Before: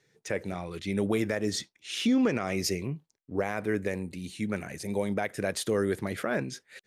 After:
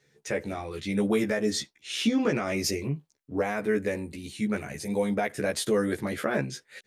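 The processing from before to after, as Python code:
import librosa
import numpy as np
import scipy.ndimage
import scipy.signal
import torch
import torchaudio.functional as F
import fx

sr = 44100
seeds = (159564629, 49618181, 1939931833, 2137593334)

y = fx.doubler(x, sr, ms=14.0, db=-2)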